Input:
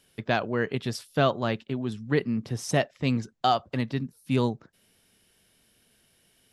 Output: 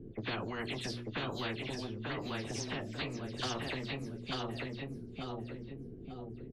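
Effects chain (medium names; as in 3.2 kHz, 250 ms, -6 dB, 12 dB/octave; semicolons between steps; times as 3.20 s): delay that grows with frequency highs early, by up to 114 ms; hum notches 60/120/180/240/300/360 Hz; level-controlled noise filter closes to 490 Hz, open at -23.5 dBFS; FFT filter 370 Hz 0 dB, 550 Hz -19 dB, 920 Hz -26 dB, 11 kHz -21 dB; compression, threshold -34 dBFS, peak gain reduction 12.5 dB; peak limiter -34 dBFS, peak gain reduction 9.5 dB; flange 0.42 Hz, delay 8.4 ms, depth 8.5 ms, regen -34%; feedback delay 892 ms, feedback 21%, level -5 dB; spectrum-flattening compressor 4:1; trim +12 dB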